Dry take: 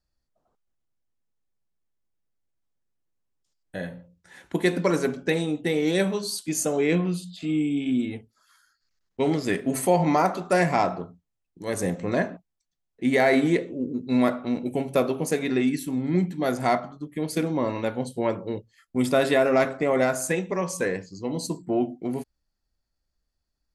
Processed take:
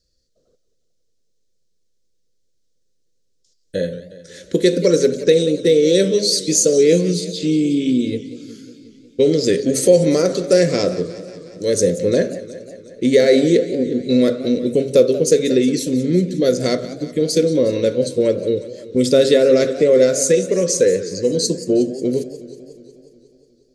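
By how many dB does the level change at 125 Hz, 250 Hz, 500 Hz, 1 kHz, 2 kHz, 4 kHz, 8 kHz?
+6.0 dB, +7.0 dB, +11.0 dB, -9.0 dB, -1.0 dB, +12.5 dB, +12.5 dB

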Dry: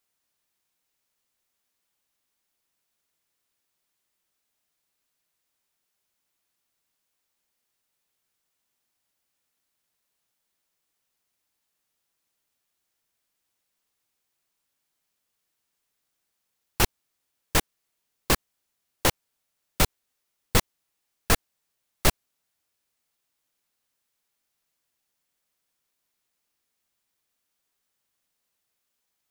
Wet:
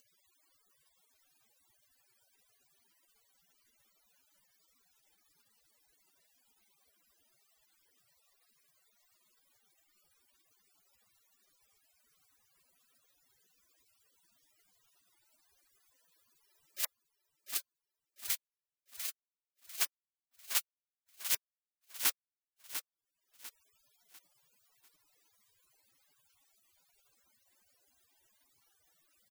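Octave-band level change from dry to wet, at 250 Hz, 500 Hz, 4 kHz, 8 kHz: under -30 dB, -27.5 dB, -9.5 dB, -7.0 dB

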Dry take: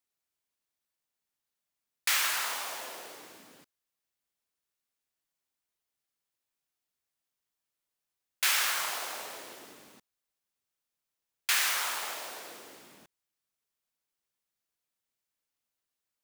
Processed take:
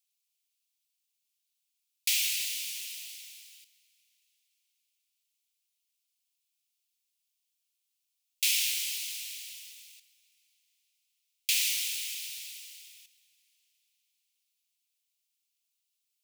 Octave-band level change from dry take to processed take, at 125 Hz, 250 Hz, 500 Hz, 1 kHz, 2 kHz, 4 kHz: no reading, under -35 dB, under -40 dB, under -40 dB, -5.5 dB, +1.5 dB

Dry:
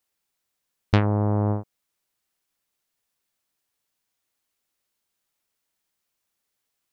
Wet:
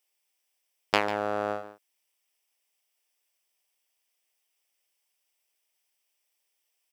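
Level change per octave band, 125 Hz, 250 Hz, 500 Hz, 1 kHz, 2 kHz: -25.0 dB, -12.0 dB, -1.0 dB, +1.5 dB, +4.0 dB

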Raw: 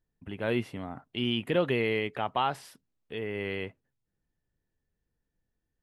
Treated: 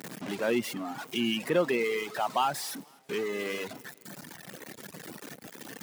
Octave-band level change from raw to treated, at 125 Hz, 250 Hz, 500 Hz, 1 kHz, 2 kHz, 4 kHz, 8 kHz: -7.0 dB, +0.5 dB, +1.0 dB, +1.5 dB, +1.0 dB, +0.5 dB, +16.5 dB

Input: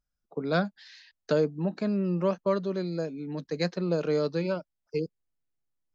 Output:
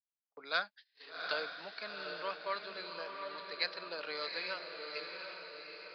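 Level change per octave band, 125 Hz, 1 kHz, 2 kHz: -33.5 dB, -3.5 dB, +1.5 dB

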